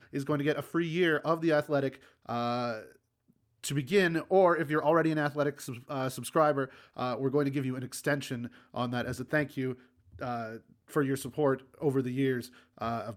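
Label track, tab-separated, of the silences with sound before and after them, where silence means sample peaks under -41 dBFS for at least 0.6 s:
2.840000	3.640000	silence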